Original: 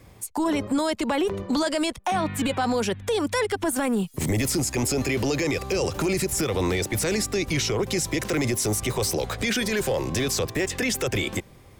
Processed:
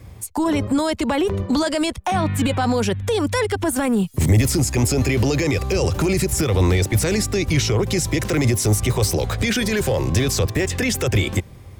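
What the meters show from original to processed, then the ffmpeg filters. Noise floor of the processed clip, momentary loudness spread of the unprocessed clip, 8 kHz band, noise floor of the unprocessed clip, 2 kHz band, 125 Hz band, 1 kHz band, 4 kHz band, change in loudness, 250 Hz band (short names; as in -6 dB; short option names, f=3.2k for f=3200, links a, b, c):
-40 dBFS, 2 LU, +3.0 dB, -49 dBFS, +3.0 dB, +10.5 dB, +3.0 dB, +3.0 dB, +5.0 dB, +5.0 dB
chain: -af "equalizer=f=79:w=0.79:g=11,volume=3dB"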